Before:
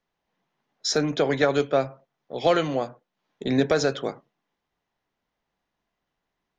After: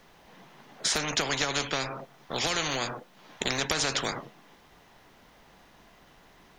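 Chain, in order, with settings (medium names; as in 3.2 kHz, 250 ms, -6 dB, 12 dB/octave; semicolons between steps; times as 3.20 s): compression 2.5:1, threshold -28 dBFS, peak gain reduction 9 dB; spectrum-flattening compressor 4:1; trim +4 dB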